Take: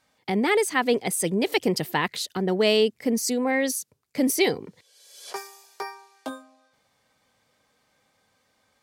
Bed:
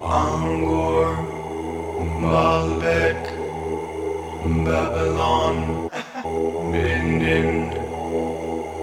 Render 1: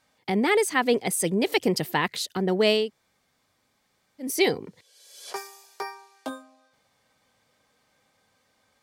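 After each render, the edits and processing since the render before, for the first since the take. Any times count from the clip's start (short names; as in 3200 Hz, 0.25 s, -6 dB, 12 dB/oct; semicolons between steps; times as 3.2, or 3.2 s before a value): 2.82–4.3 room tone, crossfade 0.24 s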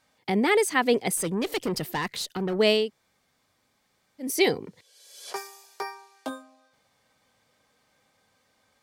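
1.17–2.59 tube stage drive 23 dB, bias 0.25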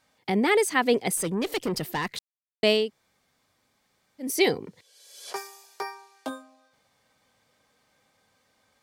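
2.19–2.63 mute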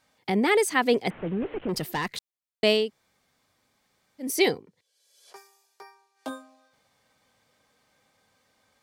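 1.1–1.69 delta modulation 16 kbps, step -42 dBFS; 4.47–6.31 dip -14 dB, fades 0.16 s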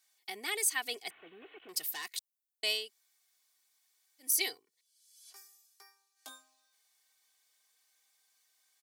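differentiator; comb 2.7 ms, depth 57%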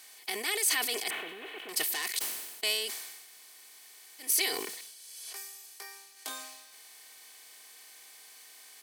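per-bin compression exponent 0.6; sustainer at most 45 dB/s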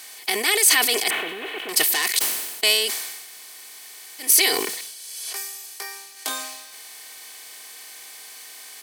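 gain +11.5 dB; limiter -3 dBFS, peak gain reduction 1.5 dB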